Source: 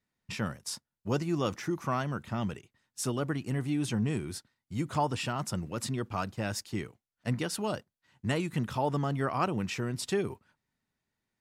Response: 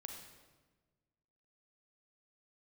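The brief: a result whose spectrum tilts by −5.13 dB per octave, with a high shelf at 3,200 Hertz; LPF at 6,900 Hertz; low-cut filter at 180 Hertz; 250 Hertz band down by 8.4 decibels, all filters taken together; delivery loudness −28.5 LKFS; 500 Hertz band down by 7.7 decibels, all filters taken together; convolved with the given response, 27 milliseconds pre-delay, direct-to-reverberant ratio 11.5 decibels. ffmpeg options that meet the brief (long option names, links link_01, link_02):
-filter_complex "[0:a]highpass=180,lowpass=6900,equalizer=frequency=250:width_type=o:gain=-7,equalizer=frequency=500:width_type=o:gain=-7.5,highshelf=frequency=3200:gain=-7,asplit=2[link_01][link_02];[1:a]atrim=start_sample=2205,adelay=27[link_03];[link_02][link_03]afir=irnorm=-1:irlink=0,volume=-7.5dB[link_04];[link_01][link_04]amix=inputs=2:normalize=0,volume=10.5dB"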